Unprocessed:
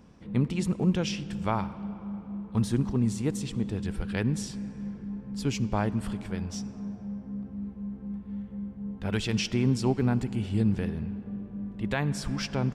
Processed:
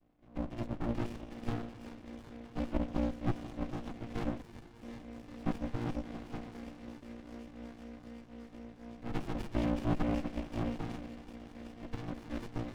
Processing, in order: vocoder on a held chord major triad, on A#3; band-passed feedback delay 733 ms, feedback 66%, band-pass 2.8 kHz, level -16.5 dB; level rider gain up to 9 dB; 4.41–4.83 s: Chebyshev high-pass 360 Hz, order 5; feedback echo behind a high-pass 376 ms, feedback 84%, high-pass 1.7 kHz, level -4.5 dB; 11.11–12.08 s: compression 6:1, threshold -26 dBFS, peak gain reduction 8.5 dB; vowel filter e; treble shelf 3.8 kHz +11 dB; sliding maximum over 65 samples; trim +5.5 dB

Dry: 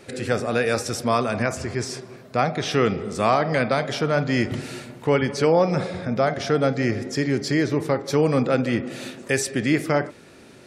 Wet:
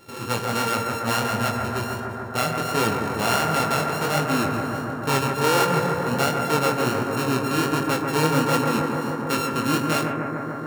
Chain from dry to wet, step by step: sorted samples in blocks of 32 samples; chorus 1.4 Hz, delay 18 ms, depth 7.7 ms; bucket-brigade echo 147 ms, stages 2048, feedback 84%, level -5 dB

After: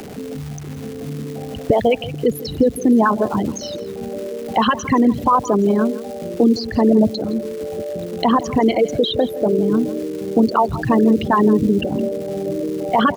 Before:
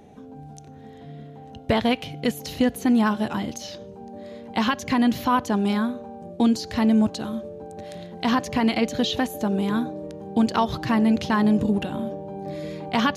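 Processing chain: resonances exaggerated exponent 3; crackle 570 per s -40 dBFS; delay 164 ms -18 dB; three bands compressed up and down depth 40%; trim +6 dB

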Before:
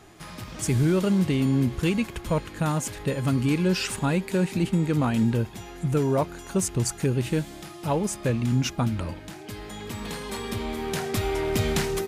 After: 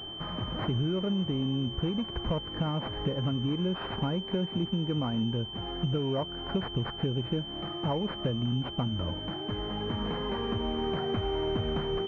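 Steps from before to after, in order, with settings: compression 6:1, threshold -32 dBFS, peak gain reduction 13 dB; class-D stage that switches slowly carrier 3.1 kHz; trim +4.5 dB

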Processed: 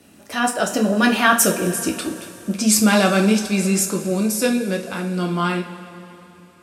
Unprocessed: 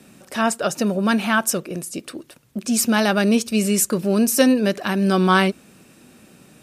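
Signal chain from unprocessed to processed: Doppler pass-by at 1.86 s, 24 m/s, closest 19 m; two-slope reverb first 0.31 s, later 3.3 s, from -18 dB, DRR 1 dB; trim +5 dB

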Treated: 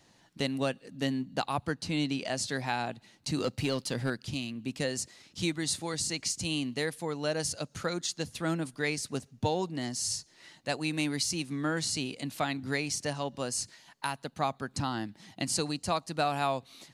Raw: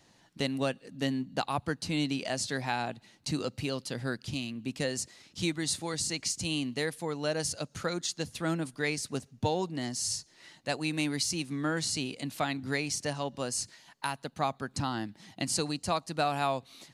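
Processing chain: 1.71–2.37 s: treble shelf 11 kHz -8 dB; 3.37–4.10 s: waveshaping leveller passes 1

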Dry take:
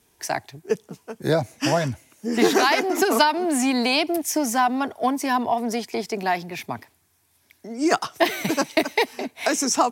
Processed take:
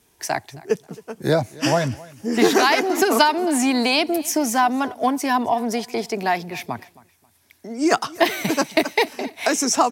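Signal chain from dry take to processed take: feedback delay 268 ms, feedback 28%, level -21.5 dB; trim +2 dB

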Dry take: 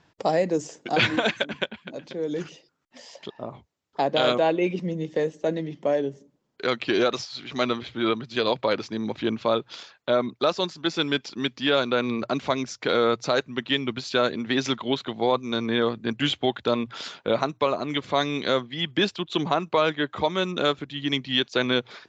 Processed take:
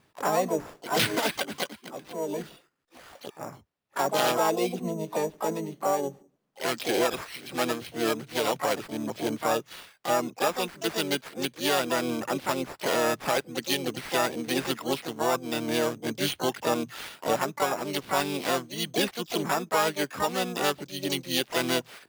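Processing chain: sample-and-hold 7×; harmony voices +5 st -2 dB, +12 st -8 dB; trim -5.5 dB

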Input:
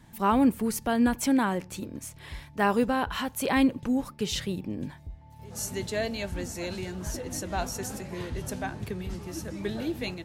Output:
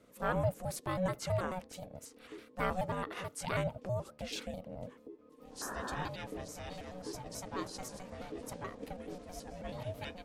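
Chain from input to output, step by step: pitch shift switched off and on -4 st, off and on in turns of 108 ms; painted sound noise, 5.61–6.09 s, 590–1500 Hz -33 dBFS; ring modulator 370 Hz; trim -6.5 dB

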